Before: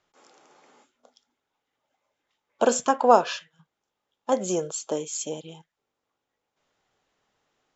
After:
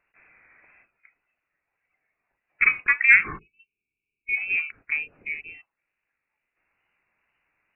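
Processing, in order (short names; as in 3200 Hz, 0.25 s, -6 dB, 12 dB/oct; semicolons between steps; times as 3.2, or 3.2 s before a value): inverted band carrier 2800 Hz; wow and flutter 54 cents; spectral delete 3.39–4.37, 470–2200 Hz; gain +1 dB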